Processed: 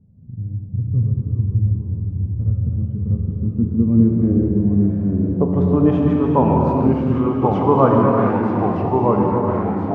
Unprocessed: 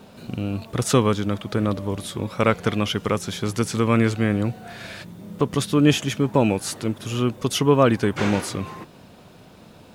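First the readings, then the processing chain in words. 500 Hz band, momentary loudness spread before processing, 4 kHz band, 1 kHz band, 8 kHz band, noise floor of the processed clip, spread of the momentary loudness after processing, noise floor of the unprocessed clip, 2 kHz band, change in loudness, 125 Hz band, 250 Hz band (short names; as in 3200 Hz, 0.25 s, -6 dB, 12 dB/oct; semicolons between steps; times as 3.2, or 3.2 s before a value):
+3.5 dB, 14 LU, under -20 dB, +6.5 dB, under -35 dB, -31 dBFS, 8 LU, -48 dBFS, n/a, +4.5 dB, +7.0 dB, +6.0 dB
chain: low-pass sweep 110 Hz -> 1000 Hz, 2.48–6.15; non-linear reverb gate 0.47 s flat, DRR -0.5 dB; echoes that change speed 0.304 s, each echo -2 st, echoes 3; gain -2 dB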